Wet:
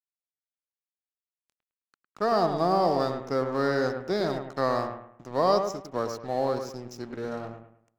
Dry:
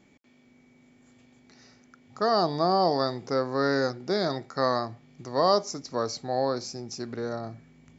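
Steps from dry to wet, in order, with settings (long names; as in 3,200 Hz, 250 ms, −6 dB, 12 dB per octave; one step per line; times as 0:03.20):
high-shelf EQ 2,000 Hz −3.5 dB
notch filter 4,500 Hz, Q 11
dead-zone distortion −45 dBFS
on a send: bucket-brigade delay 106 ms, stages 2,048, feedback 33%, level −7 dB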